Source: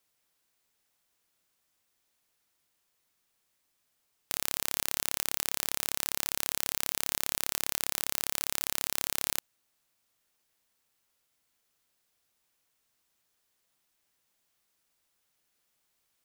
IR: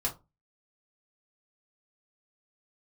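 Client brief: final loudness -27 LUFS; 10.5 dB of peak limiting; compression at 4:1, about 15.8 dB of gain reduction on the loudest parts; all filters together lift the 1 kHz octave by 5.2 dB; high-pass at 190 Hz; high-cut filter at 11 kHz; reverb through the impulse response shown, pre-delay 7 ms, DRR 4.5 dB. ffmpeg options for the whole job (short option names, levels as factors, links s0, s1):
-filter_complex "[0:a]highpass=190,lowpass=11000,equalizer=f=1000:t=o:g=6.5,acompressor=threshold=0.00501:ratio=4,alimiter=level_in=2:limit=0.0631:level=0:latency=1,volume=0.501,asplit=2[s0][s1];[1:a]atrim=start_sample=2205,adelay=7[s2];[s1][s2]afir=irnorm=-1:irlink=0,volume=0.335[s3];[s0][s3]amix=inputs=2:normalize=0,volume=25.1"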